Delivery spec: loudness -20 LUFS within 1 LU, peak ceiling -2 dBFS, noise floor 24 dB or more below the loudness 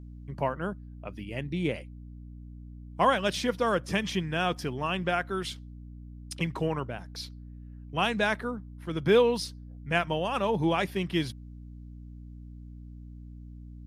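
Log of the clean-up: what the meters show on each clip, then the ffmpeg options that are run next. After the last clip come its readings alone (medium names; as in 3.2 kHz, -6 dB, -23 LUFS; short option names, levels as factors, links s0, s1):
hum 60 Hz; highest harmonic 300 Hz; hum level -41 dBFS; loudness -29.5 LUFS; peak level -10.5 dBFS; loudness target -20.0 LUFS
-> -af "bandreject=f=60:t=h:w=6,bandreject=f=120:t=h:w=6,bandreject=f=180:t=h:w=6,bandreject=f=240:t=h:w=6,bandreject=f=300:t=h:w=6"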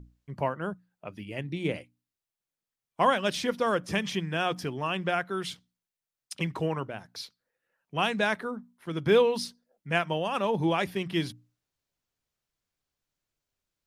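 hum not found; loudness -29.5 LUFS; peak level -10.5 dBFS; loudness target -20.0 LUFS
-> -af "volume=2.99,alimiter=limit=0.794:level=0:latency=1"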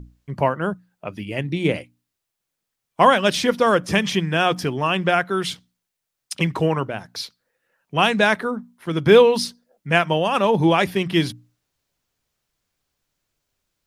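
loudness -20.0 LUFS; peak level -2.0 dBFS; noise floor -81 dBFS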